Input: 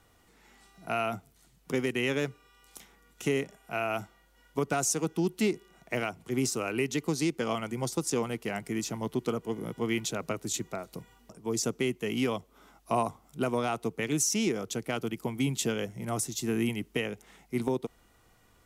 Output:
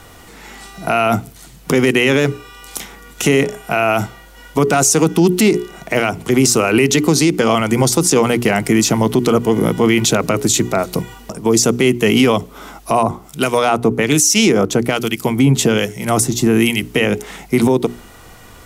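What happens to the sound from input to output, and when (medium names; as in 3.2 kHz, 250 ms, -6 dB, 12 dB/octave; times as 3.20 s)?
13.03–16.83 s: harmonic tremolo 1.2 Hz, crossover 1.7 kHz
whole clip: hum notches 60/120/180/240/300/360/420 Hz; loudness maximiser +26 dB; trim -3 dB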